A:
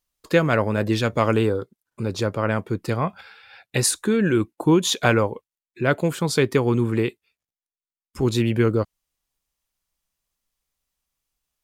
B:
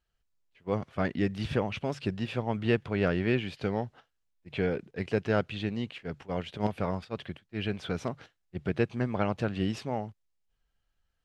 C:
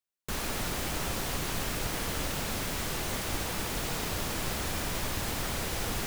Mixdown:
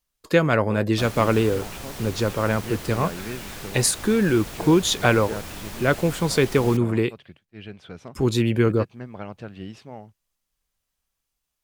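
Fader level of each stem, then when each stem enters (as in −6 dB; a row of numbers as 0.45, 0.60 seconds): 0.0, −7.0, −4.0 decibels; 0.00, 0.00, 0.70 seconds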